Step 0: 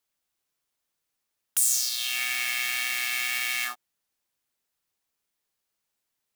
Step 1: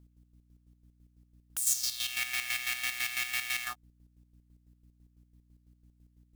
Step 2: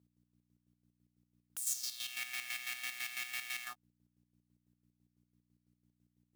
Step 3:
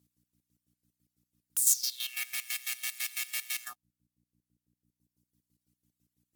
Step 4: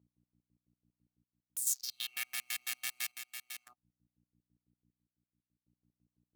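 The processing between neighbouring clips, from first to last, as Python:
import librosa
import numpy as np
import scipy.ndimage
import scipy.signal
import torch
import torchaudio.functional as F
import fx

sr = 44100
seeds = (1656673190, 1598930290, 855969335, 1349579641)

y1 = fx.add_hum(x, sr, base_hz=60, snr_db=24)
y1 = fx.chopper(y1, sr, hz=6.0, depth_pct=60, duty_pct=40)
y1 = y1 * 10.0 ** (-2.5 / 20.0)
y2 = scipy.signal.sosfilt(scipy.signal.butter(2, 130.0, 'highpass', fs=sr, output='sos'), y1)
y2 = y2 * 10.0 ** (-8.0 / 20.0)
y3 = fx.dereverb_blind(y2, sr, rt60_s=1.8)
y3 = fx.peak_eq(y3, sr, hz=13000.0, db=14.0, octaves=2.5)
y4 = fx.wiener(y3, sr, points=25)
y4 = fx.chopper(y4, sr, hz=0.53, depth_pct=60, duty_pct=65)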